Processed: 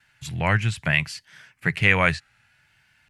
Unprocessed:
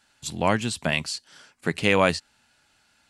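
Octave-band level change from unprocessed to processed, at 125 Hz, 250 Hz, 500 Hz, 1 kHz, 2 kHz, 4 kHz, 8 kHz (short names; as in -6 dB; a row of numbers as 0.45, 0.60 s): +7.0, -2.0, -5.0, -1.5, +6.0, -2.0, -6.0 dB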